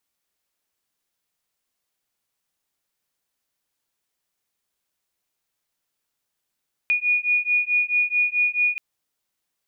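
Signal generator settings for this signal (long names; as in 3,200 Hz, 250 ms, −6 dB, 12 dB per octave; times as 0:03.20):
two tones that beat 2,450 Hz, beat 4.6 Hz, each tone −21.5 dBFS 1.88 s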